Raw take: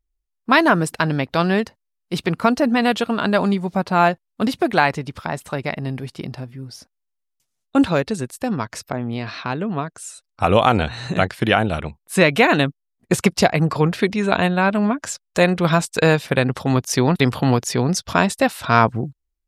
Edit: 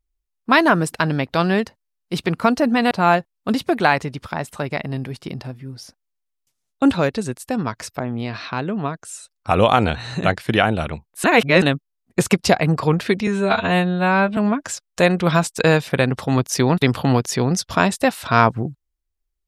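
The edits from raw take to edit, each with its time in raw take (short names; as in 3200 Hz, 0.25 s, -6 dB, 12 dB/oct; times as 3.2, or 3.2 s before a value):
2.91–3.84 cut
12.17–12.55 reverse
14.2–14.75 stretch 2×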